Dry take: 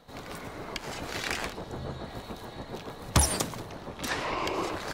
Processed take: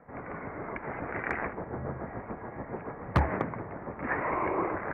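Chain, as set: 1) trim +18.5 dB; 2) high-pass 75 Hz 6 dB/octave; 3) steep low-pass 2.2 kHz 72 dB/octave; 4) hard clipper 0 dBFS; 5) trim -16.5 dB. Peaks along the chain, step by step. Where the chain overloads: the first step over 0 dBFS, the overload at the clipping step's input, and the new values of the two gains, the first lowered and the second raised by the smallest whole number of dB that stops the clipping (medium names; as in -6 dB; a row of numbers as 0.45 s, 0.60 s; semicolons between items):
+6.0 dBFS, +7.0 dBFS, +7.5 dBFS, 0.0 dBFS, -16.5 dBFS; step 1, 7.5 dB; step 1 +10.5 dB, step 5 -8.5 dB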